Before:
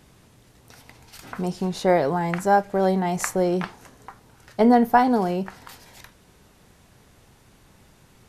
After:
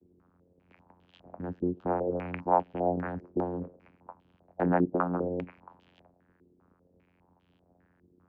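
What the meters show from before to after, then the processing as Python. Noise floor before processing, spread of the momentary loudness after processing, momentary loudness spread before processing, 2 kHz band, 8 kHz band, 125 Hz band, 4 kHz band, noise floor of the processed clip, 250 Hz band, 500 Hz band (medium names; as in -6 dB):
-56 dBFS, 14 LU, 13 LU, -12.5 dB, under -40 dB, -7.0 dB, under -20 dB, -69 dBFS, -9.5 dB, -9.0 dB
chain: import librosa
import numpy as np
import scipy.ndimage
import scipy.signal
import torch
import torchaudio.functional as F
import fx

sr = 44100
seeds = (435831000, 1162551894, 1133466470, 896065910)

y = fx.vocoder(x, sr, bands=8, carrier='saw', carrier_hz=88.8)
y = fx.hpss(y, sr, part='harmonic', gain_db=-9)
y = fx.filter_held_lowpass(y, sr, hz=5.0, low_hz=370.0, high_hz=3200.0)
y = y * 10.0 ** (-5.0 / 20.0)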